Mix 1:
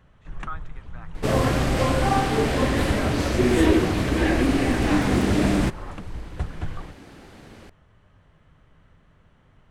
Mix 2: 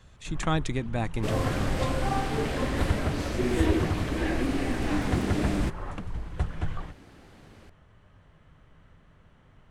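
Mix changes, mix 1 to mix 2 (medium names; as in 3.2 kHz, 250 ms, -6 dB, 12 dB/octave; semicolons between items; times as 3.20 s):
speech: remove band-pass filter 1.3 kHz, Q 5.9; second sound -7.5 dB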